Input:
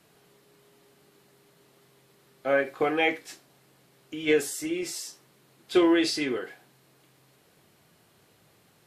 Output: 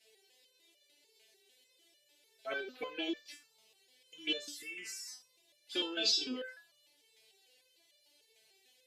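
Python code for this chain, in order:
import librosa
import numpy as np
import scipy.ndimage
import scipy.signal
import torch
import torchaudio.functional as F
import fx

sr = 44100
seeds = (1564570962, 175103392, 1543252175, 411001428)

p1 = fx.weighting(x, sr, curve='D')
p2 = fx.level_steps(p1, sr, step_db=22)
p3 = p1 + F.gain(torch.from_numpy(p2), 0.5).numpy()
p4 = fx.env_phaser(p3, sr, low_hz=200.0, high_hz=2000.0, full_db=-17.5)
p5 = fx.resonator_held(p4, sr, hz=6.7, low_hz=220.0, high_hz=590.0)
y = F.gain(torch.from_numpy(p5), 2.0).numpy()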